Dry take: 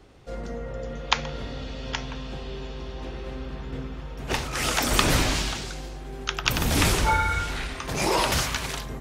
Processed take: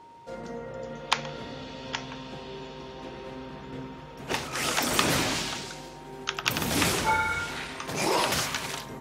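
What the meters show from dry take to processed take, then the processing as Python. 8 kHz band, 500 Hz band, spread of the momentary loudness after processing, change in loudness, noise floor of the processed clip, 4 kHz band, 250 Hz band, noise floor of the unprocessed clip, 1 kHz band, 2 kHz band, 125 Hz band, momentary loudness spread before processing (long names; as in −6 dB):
−2.0 dB, −2.0 dB, 17 LU, −2.0 dB, −44 dBFS, −2.0 dB, −2.5 dB, −37 dBFS, −2.0 dB, −2.0 dB, −8.0 dB, 15 LU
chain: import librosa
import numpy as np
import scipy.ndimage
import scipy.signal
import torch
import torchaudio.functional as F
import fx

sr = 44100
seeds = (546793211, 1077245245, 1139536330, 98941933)

y = scipy.signal.sosfilt(scipy.signal.butter(2, 140.0, 'highpass', fs=sr, output='sos'), x)
y = y + 10.0 ** (-46.0 / 20.0) * np.sin(2.0 * np.pi * 930.0 * np.arange(len(y)) / sr)
y = np.clip(10.0 ** (5.5 / 20.0) * y, -1.0, 1.0) / 10.0 ** (5.5 / 20.0)
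y = F.gain(torch.from_numpy(y), -2.0).numpy()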